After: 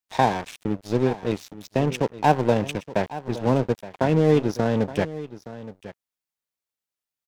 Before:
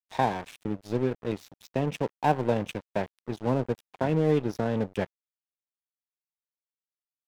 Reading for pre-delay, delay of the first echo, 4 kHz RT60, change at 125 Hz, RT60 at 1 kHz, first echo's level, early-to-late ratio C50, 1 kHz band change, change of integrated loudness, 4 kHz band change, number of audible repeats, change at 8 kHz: no reverb audible, 870 ms, no reverb audible, +5.5 dB, no reverb audible, −15.5 dB, no reverb audible, +5.5 dB, +5.5 dB, +7.5 dB, 1, can't be measured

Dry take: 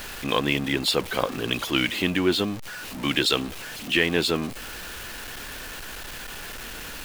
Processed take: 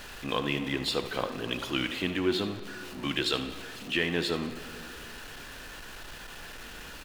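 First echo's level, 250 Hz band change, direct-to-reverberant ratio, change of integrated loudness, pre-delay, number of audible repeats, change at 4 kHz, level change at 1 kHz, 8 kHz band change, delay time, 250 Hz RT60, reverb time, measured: −13.5 dB, −5.5 dB, 8.0 dB, −5.0 dB, 6 ms, 1, −7.0 dB, −6.0 dB, −9.5 dB, 76 ms, 2.7 s, 2.7 s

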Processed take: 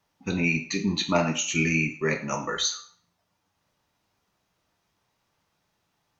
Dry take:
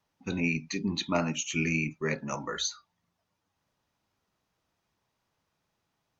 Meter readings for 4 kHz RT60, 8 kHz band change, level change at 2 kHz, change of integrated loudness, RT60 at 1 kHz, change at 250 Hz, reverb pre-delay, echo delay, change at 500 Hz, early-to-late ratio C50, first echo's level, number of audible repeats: 0.45 s, can't be measured, +5.5 dB, +5.0 dB, 0.50 s, +4.0 dB, 3 ms, no echo audible, +5.5 dB, 10.5 dB, no echo audible, no echo audible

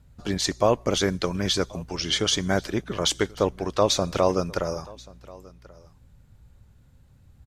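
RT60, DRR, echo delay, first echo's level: no reverb audible, no reverb audible, 1,084 ms, −23.0 dB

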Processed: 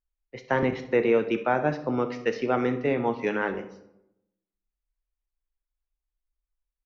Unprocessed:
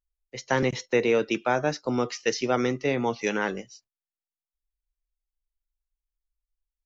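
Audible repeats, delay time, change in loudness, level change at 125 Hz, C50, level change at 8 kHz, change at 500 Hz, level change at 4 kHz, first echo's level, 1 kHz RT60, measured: 1, 65 ms, 0.0 dB, −0.5 dB, 11.0 dB, can't be measured, +0.5 dB, −8.5 dB, −15.5 dB, 0.80 s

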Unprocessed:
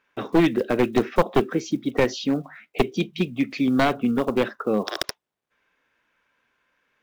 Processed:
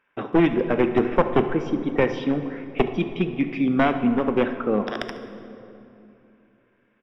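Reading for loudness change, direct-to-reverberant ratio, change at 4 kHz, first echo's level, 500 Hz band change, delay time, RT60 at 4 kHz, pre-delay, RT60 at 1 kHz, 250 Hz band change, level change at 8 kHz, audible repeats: +0.5 dB, 8.5 dB, −6.0 dB, −17.5 dB, +1.0 dB, 70 ms, 1.8 s, 13 ms, 2.7 s, +1.0 dB, below −15 dB, 1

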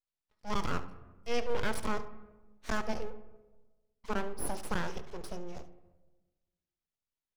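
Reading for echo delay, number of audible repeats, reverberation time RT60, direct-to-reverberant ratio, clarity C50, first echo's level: 71 ms, 1, 1.2 s, 10.5 dB, 12.5 dB, −16.5 dB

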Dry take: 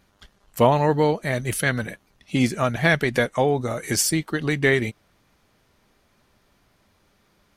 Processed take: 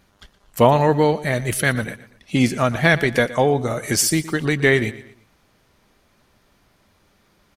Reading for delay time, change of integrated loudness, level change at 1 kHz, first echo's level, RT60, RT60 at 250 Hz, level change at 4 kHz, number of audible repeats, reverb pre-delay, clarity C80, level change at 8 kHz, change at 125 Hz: 118 ms, +3.0 dB, +3.0 dB, −17.0 dB, no reverb audible, no reverb audible, +3.0 dB, 3, no reverb audible, no reverb audible, +3.0 dB, +3.0 dB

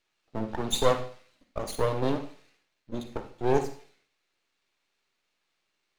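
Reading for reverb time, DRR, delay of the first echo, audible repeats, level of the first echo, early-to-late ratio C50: 0.45 s, 8.0 dB, no echo audible, no echo audible, no echo audible, 9.5 dB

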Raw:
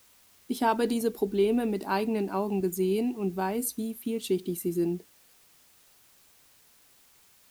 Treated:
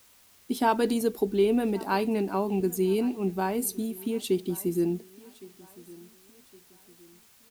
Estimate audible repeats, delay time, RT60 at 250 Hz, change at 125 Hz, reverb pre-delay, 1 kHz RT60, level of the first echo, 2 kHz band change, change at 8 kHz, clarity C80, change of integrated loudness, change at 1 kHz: 2, 1,113 ms, no reverb audible, +1.5 dB, no reverb audible, no reverb audible, −21.5 dB, +1.5 dB, +1.5 dB, no reverb audible, +1.5 dB, +1.5 dB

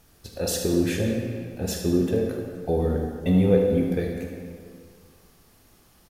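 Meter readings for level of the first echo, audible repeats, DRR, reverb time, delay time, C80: −9.5 dB, 1, 0.5 dB, 2.2 s, 76 ms, 4.0 dB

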